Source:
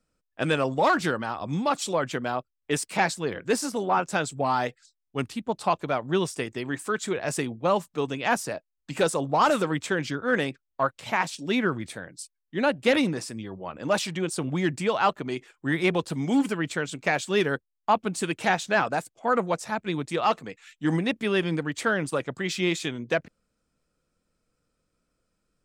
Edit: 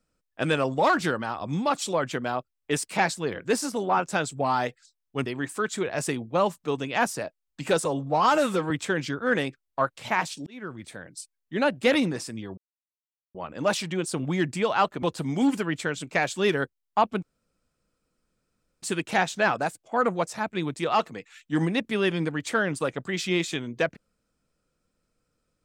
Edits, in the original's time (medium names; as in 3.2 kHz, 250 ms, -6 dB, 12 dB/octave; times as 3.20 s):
5.26–6.56 s: delete
9.15–9.72 s: stretch 1.5×
11.48–12.19 s: fade in
13.59 s: insert silence 0.77 s
15.27–15.94 s: delete
18.14 s: insert room tone 1.60 s